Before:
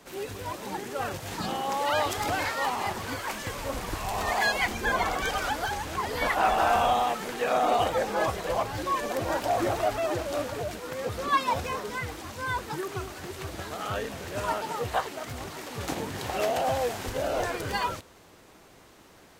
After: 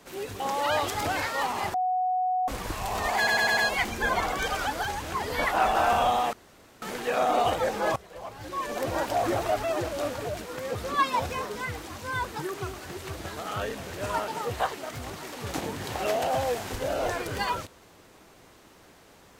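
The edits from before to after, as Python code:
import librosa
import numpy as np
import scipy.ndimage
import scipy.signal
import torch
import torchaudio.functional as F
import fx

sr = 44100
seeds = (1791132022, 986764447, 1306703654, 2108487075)

y = fx.edit(x, sr, fx.cut(start_s=0.4, length_s=1.23),
    fx.bleep(start_s=2.97, length_s=0.74, hz=738.0, db=-23.0),
    fx.stutter(start_s=4.4, slice_s=0.1, count=5),
    fx.insert_room_tone(at_s=7.16, length_s=0.49),
    fx.fade_in_from(start_s=8.3, length_s=0.85, curve='qua', floor_db=-16.0), tone=tone)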